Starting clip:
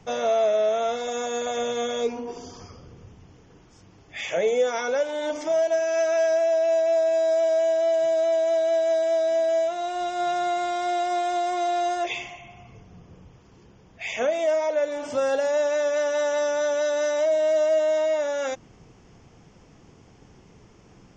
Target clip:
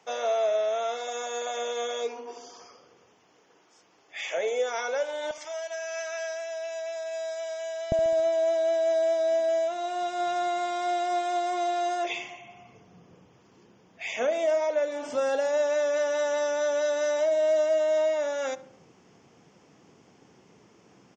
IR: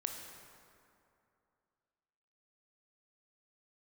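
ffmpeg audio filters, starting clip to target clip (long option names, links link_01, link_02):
-filter_complex "[0:a]asetnsamples=nb_out_samples=441:pad=0,asendcmd='5.31 highpass f 1200;7.92 highpass f 190',highpass=500,asplit=2[link_01][link_02];[link_02]adelay=69,lowpass=frequency=1600:poles=1,volume=-15dB,asplit=2[link_03][link_04];[link_04]adelay=69,lowpass=frequency=1600:poles=1,volume=0.55,asplit=2[link_05][link_06];[link_06]adelay=69,lowpass=frequency=1600:poles=1,volume=0.55,asplit=2[link_07][link_08];[link_08]adelay=69,lowpass=frequency=1600:poles=1,volume=0.55,asplit=2[link_09][link_10];[link_10]adelay=69,lowpass=frequency=1600:poles=1,volume=0.55[link_11];[link_01][link_03][link_05][link_07][link_09][link_11]amix=inputs=6:normalize=0,volume=-2.5dB"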